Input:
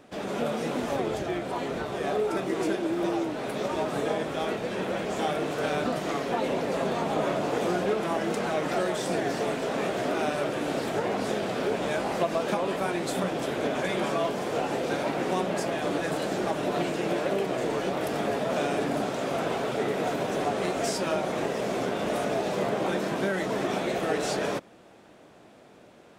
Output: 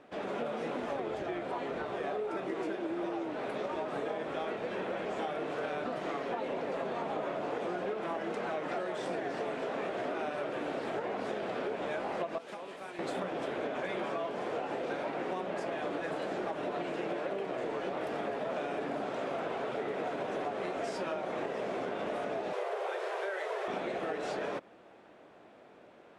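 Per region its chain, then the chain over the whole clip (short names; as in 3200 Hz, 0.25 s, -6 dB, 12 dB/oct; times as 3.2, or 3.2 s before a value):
12.38–12.99 pre-emphasis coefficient 0.8 + Doppler distortion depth 0.19 ms
22.53–23.68 delta modulation 64 kbps, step -37 dBFS + steep high-pass 380 Hz 96 dB/oct + doubler 49 ms -10.5 dB
whole clip: LPF 11000 Hz 24 dB/oct; tone controls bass -8 dB, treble -13 dB; compressor, threshold -30 dBFS; gain -2 dB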